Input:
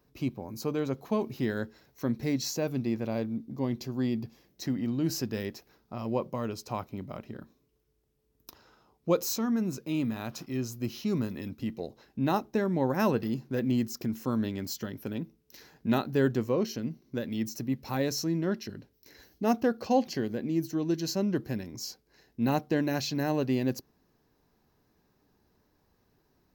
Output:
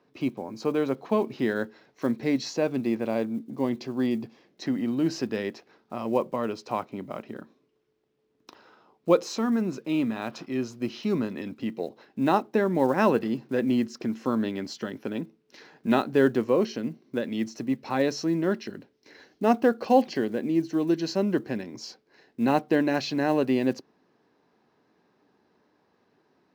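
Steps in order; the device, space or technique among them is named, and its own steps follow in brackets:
early digital voice recorder (band-pass filter 230–3,600 Hz; one scale factor per block 7 bits)
level +6 dB

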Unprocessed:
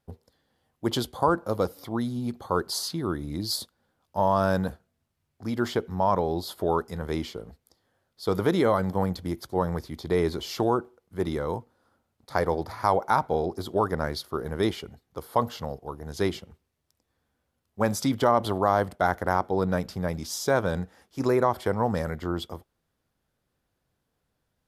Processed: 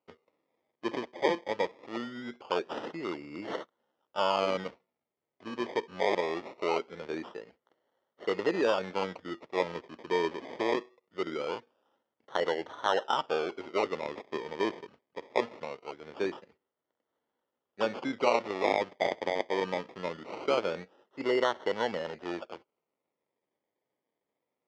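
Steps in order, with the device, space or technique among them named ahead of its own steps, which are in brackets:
circuit-bent sampling toy (sample-and-hold swept by an LFO 25×, swing 60% 0.22 Hz; loudspeaker in its box 430–4,100 Hz, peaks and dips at 730 Hz −6 dB, 1,100 Hz −5 dB, 1,600 Hz −7 dB, 2,600 Hz −6 dB, 3,900 Hz −9 dB)

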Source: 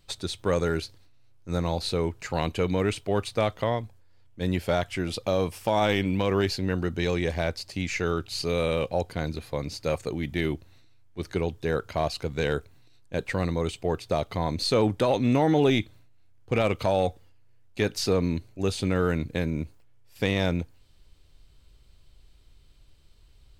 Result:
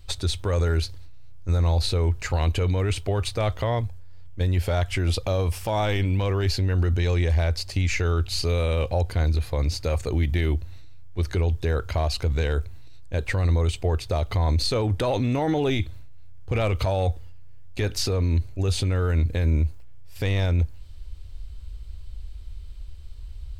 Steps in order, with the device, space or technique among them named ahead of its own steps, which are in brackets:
car stereo with a boomy subwoofer (low shelf with overshoot 110 Hz +12.5 dB, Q 1.5; brickwall limiter −21 dBFS, peak gain reduction 11 dB)
level +5.5 dB

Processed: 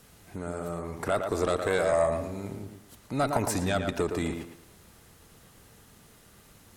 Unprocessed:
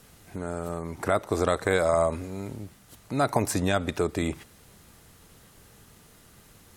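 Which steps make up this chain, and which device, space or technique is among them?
rockabilly slapback (tube saturation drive 13 dB, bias 0.45; tape delay 113 ms, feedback 34%, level −5 dB, low-pass 2,600 Hz)

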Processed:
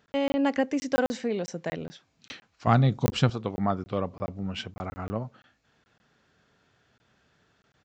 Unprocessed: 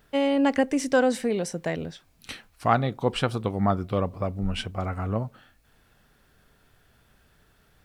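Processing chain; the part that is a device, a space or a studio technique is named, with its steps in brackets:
call with lost packets (high-pass filter 110 Hz 12 dB per octave; downsampling to 16,000 Hz; dropped packets of 20 ms random)
0:02.67–0:03.30: bass and treble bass +13 dB, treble +9 dB
level −3 dB

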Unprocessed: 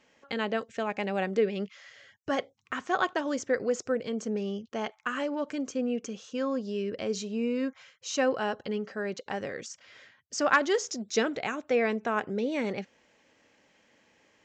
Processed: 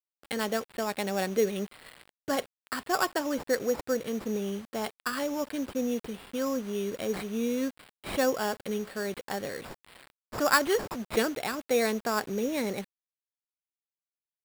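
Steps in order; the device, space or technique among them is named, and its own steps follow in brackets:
early 8-bit sampler (sample-rate reduction 6,200 Hz, jitter 0%; bit reduction 8 bits)

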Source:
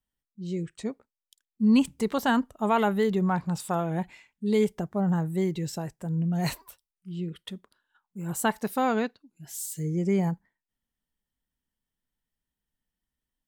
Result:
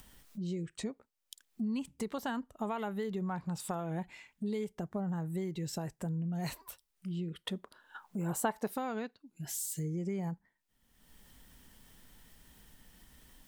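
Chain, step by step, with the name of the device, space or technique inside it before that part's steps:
upward and downward compression (upward compression, threshold −35 dBFS; downward compressor 6 to 1, threshold −34 dBFS, peak gain reduction 16 dB)
0:07.44–0:08.74: parametric band 670 Hz +7.5 dB 2.2 octaves

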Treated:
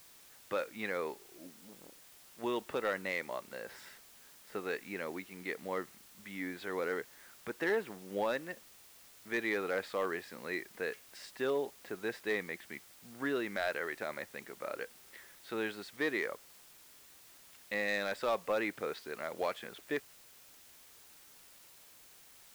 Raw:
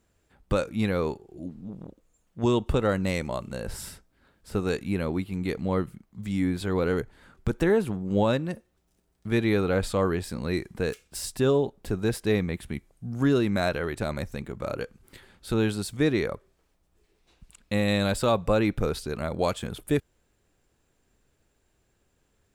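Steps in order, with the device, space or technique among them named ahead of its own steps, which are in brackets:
drive-through speaker (band-pass filter 400–3,800 Hz; parametric band 1,900 Hz +9 dB 0.51 octaves; hard clipping −17.5 dBFS, distortion −20 dB; white noise bed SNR 19 dB)
level −7.5 dB

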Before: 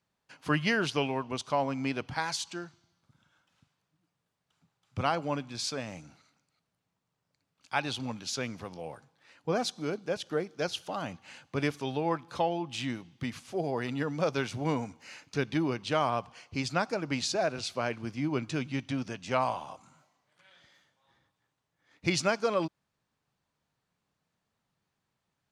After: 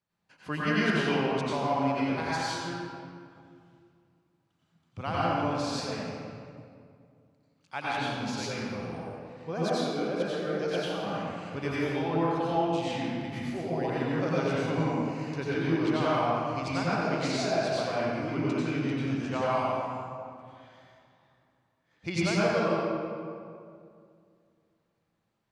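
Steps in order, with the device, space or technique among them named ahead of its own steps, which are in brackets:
swimming-pool hall (convolution reverb RT60 2.4 s, pre-delay 83 ms, DRR −8.5 dB; high-shelf EQ 4,900 Hz −5 dB)
level −6.5 dB

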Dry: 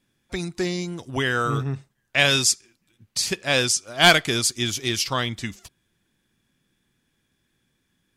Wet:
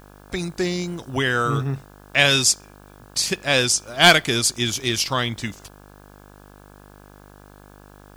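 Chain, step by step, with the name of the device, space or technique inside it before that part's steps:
video cassette with head-switching buzz (hum with harmonics 50 Hz, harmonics 34, −49 dBFS −3 dB per octave; white noise bed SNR 36 dB)
level +2 dB

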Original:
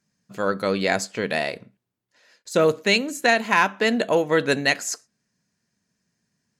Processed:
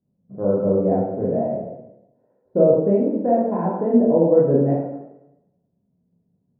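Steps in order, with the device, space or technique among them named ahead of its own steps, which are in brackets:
next room (low-pass filter 630 Hz 24 dB per octave; convolution reverb RT60 0.90 s, pre-delay 12 ms, DRR −6 dB)

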